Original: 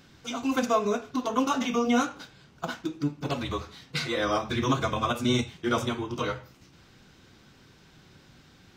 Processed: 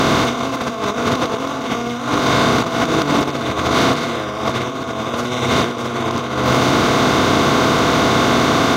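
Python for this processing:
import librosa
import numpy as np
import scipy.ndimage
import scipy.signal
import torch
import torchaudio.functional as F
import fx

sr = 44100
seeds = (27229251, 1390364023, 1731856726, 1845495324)

y = fx.bin_compress(x, sr, power=0.2)
y = fx.room_flutter(y, sr, wall_m=10.8, rt60_s=0.51)
y = fx.over_compress(y, sr, threshold_db=-21.0, ratio=-0.5)
y = y * 10.0 ** (4.5 / 20.0)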